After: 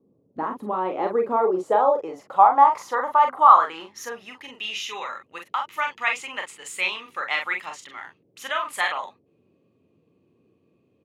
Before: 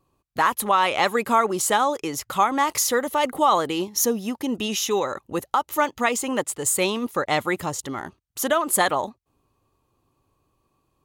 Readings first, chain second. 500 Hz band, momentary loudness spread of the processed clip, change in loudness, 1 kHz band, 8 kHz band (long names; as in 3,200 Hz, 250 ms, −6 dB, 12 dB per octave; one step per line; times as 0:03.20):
−2.0 dB, 22 LU, +0.5 dB, +3.0 dB, −16.5 dB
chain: dynamic equaliser 970 Hz, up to +7 dB, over −33 dBFS, Q 0.85
band-pass filter sweep 280 Hz → 2,400 Hz, 0:00.70–0:04.60
noise in a band 99–470 Hz −68 dBFS
on a send: ambience of single reflections 32 ms −9.5 dB, 43 ms −5.5 dB
on the sum: level +2 dB